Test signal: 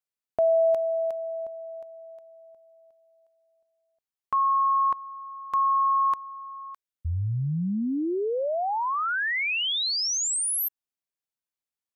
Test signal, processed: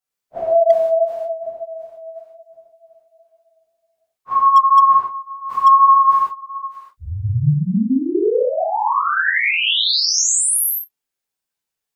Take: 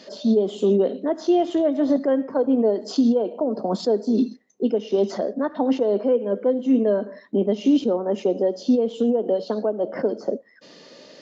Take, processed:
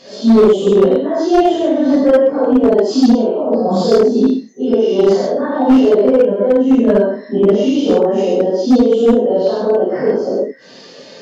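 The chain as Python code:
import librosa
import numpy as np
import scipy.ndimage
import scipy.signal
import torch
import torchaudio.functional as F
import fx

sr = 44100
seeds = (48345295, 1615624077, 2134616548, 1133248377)

y = fx.phase_scramble(x, sr, seeds[0], window_ms=100)
y = fx.rev_gated(y, sr, seeds[1], gate_ms=160, shape='flat', drr_db=-5.5)
y = fx.dynamic_eq(y, sr, hz=1300.0, q=6.8, threshold_db=-38.0, ratio=4.0, max_db=-4)
y = np.clip(y, -10.0 ** (-7.5 / 20.0), 10.0 ** (-7.5 / 20.0))
y = F.gain(torch.from_numpy(y), 3.0).numpy()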